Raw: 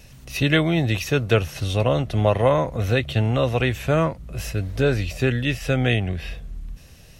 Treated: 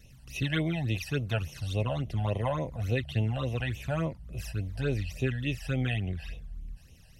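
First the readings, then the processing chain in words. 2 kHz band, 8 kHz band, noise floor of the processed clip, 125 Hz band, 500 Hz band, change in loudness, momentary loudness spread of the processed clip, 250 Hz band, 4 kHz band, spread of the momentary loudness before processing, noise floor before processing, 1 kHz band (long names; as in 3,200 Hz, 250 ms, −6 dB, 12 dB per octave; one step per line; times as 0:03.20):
−10.5 dB, −10.5 dB, −54 dBFS, −8.0 dB, −13.5 dB, −10.0 dB, 11 LU, −10.0 dB, −10.5 dB, 13 LU, −46 dBFS, −12.0 dB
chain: all-pass phaser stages 12, 3.5 Hz, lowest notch 360–1,600 Hz
level −8 dB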